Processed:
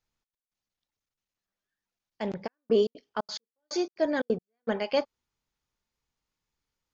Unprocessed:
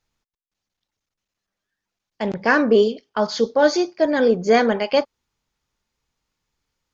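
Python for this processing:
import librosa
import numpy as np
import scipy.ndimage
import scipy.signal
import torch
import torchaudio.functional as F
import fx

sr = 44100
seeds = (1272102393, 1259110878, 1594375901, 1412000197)

y = fx.step_gate(x, sr, bpm=178, pattern='xx.x....xx.x', floor_db=-60.0, edge_ms=4.5, at=(2.46, 4.67), fade=0.02)
y = F.gain(torch.from_numpy(y), -8.0).numpy()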